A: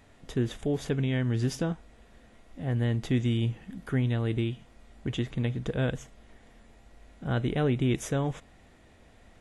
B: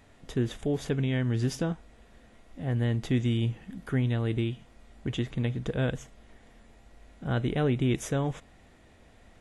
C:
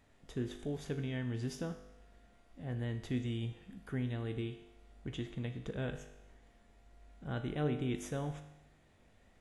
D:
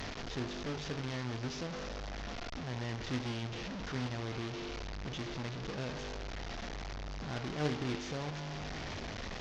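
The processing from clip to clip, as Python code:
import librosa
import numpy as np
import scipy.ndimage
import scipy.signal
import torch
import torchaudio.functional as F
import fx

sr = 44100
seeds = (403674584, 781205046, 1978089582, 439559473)

y1 = x
y2 = fx.comb_fb(y1, sr, f0_hz=50.0, decay_s=0.92, harmonics='all', damping=0.0, mix_pct=70)
y2 = y2 * librosa.db_to_amplitude(-2.0)
y3 = fx.delta_mod(y2, sr, bps=32000, step_db=-32.0)
y3 = fx.cheby_harmonics(y3, sr, harmonics=(3,), levels_db=(-15,), full_scale_db=-20.5)
y3 = y3 * librosa.db_to_amplitude(3.5)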